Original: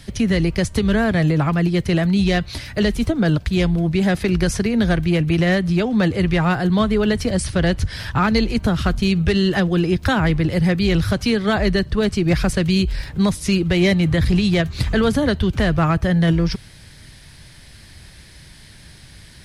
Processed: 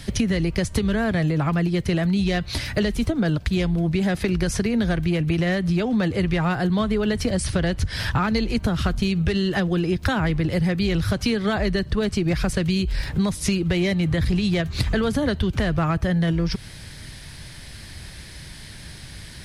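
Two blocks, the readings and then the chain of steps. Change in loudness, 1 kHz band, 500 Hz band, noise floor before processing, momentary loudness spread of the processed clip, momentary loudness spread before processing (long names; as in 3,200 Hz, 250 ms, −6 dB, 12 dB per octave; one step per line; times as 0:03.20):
−4.0 dB, −4.5 dB, −4.5 dB, −44 dBFS, 17 LU, 3 LU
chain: downward compressor 6 to 1, threshold −23 dBFS, peak gain reduction 10.5 dB
level +4 dB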